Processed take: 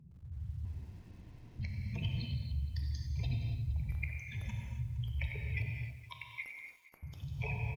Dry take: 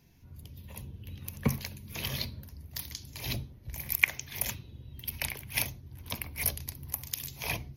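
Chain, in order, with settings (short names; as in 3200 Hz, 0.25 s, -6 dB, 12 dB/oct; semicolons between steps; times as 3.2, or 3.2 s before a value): spectral contrast raised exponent 2.6; 0.65–1.59 room tone; 5.7–7.03 HPF 1000 Hz 24 dB/oct; compressor 10:1, threshold -39 dBFS, peak gain reduction 23 dB; one-sided clip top -27 dBFS, bottom -23.5 dBFS; tape spacing loss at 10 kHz 29 dB; echo 0.466 s -19.5 dB; non-linear reverb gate 0.31 s flat, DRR 1 dB; lo-fi delay 93 ms, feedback 55%, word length 11-bit, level -12.5 dB; gain +6.5 dB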